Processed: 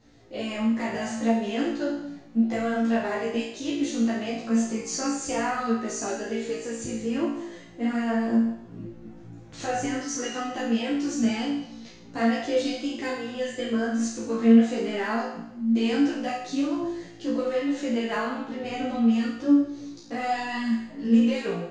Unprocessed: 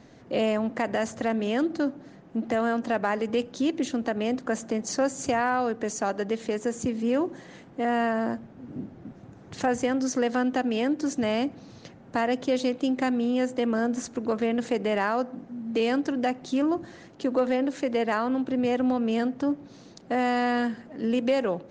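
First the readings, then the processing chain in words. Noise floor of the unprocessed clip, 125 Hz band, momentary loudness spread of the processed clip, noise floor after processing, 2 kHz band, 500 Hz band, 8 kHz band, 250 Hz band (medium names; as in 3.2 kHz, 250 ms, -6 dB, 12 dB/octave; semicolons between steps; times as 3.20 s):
-50 dBFS, +2.5 dB, 11 LU, -46 dBFS, -1.0 dB, -3.0 dB, +3.5 dB, +3.0 dB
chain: peaking EQ 810 Hz -6.5 dB 2.8 oct; level rider gain up to 3 dB; flange 0.15 Hz, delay 2.2 ms, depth 4.8 ms, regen -57%; flutter echo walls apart 3 m, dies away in 0.79 s; three-phase chorus; trim +2 dB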